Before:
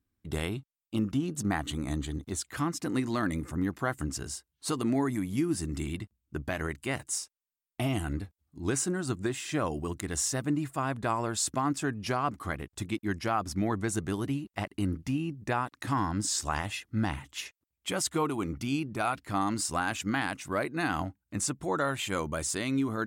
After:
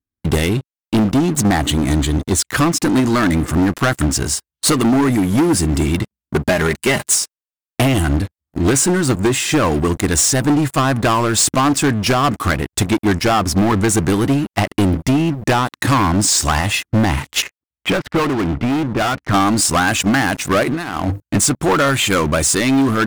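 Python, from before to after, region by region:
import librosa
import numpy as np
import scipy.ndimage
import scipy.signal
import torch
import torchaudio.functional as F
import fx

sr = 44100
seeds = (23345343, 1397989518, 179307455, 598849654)

y = fx.chain(x, sr, fx.highpass(hz=74.0, slope=6),
    fx.comb(ms=4.9, depth=0.52), at=(6.03, 7.16))
y = fx.chain(y, sr, fx.lowpass(hz=2400.0, slope=24),
    fx.clip_hard(threshold_db=-34.5), at=(17.42, 19.33))
y = fx.chain(y, sr, fx.hum_notches(base_hz=50, count=3),
    fx.over_compress(threshold_db=-40.0, ratio=-1.0), at=(20.63, 21.22))
y = fx.transient(y, sr, attack_db=8, sustain_db=2)
y = fx.leveller(y, sr, passes=5)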